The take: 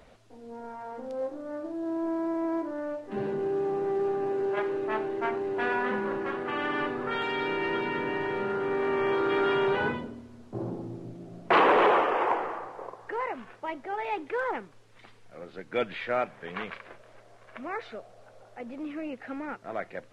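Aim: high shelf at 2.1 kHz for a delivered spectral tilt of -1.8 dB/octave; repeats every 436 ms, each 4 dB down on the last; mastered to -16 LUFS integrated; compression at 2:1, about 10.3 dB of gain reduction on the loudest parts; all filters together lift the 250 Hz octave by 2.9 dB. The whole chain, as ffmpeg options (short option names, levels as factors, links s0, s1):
-af "equalizer=f=250:t=o:g=4.5,highshelf=f=2100:g=-4.5,acompressor=threshold=0.0141:ratio=2,aecho=1:1:436|872|1308|1744|2180|2616|3052|3488|3924:0.631|0.398|0.25|0.158|0.0994|0.0626|0.0394|0.0249|0.0157,volume=8.41"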